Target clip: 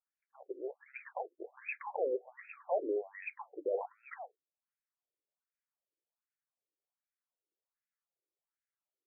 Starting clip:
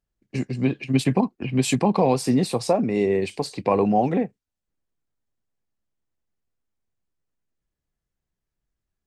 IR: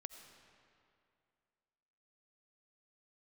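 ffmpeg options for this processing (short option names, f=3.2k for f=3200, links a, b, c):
-af "alimiter=limit=-17dB:level=0:latency=1:release=14,afftfilt=real='re*between(b*sr/1024,410*pow(1900/410,0.5+0.5*sin(2*PI*1.3*pts/sr))/1.41,410*pow(1900/410,0.5+0.5*sin(2*PI*1.3*pts/sr))*1.41)':imag='im*between(b*sr/1024,410*pow(1900/410,0.5+0.5*sin(2*PI*1.3*pts/sr))/1.41,410*pow(1900/410,0.5+0.5*sin(2*PI*1.3*pts/sr))*1.41)':win_size=1024:overlap=0.75,volume=-4dB"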